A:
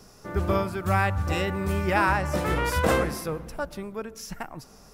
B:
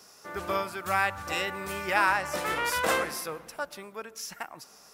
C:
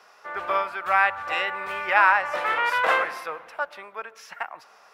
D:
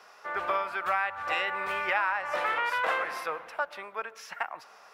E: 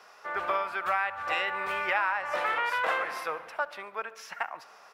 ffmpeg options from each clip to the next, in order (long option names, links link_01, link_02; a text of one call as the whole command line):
ffmpeg -i in.wav -af "highpass=frequency=1100:poles=1,volume=2dB" out.wav
ffmpeg -i in.wav -filter_complex "[0:a]acrossover=split=540 3100:gain=0.1 1 0.0794[link_01][link_02][link_03];[link_01][link_02][link_03]amix=inputs=3:normalize=0,volume=7.5dB" out.wav
ffmpeg -i in.wav -af "acompressor=threshold=-25dB:ratio=5" out.wav
ffmpeg -i in.wav -af "aecho=1:1:70|140|210|280:0.0891|0.049|0.027|0.0148" out.wav